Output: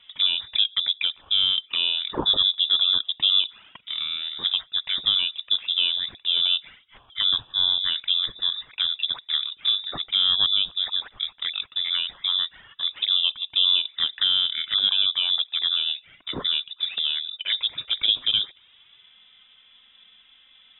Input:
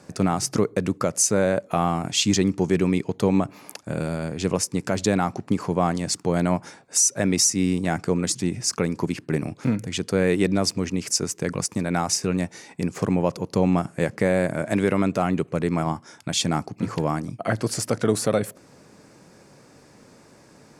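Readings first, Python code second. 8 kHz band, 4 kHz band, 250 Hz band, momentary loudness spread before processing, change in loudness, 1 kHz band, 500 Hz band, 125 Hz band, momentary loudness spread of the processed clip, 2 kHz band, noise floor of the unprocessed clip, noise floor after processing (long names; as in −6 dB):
below −40 dB, +14.5 dB, below −20 dB, 8 LU, +2.0 dB, −13.5 dB, below −20 dB, below −20 dB, 8 LU, −3.5 dB, −53 dBFS, −57 dBFS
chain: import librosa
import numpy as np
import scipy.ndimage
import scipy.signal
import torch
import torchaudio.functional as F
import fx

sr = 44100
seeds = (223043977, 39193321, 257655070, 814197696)

y = fx.env_flanger(x, sr, rest_ms=4.1, full_db=-18.0)
y = fx.freq_invert(y, sr, carrier_hz=3700)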